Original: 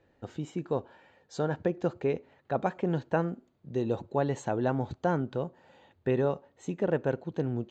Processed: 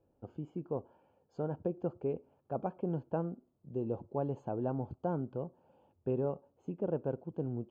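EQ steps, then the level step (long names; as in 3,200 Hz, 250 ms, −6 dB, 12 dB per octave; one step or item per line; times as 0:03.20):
moving average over 23 samples
−5.5 dB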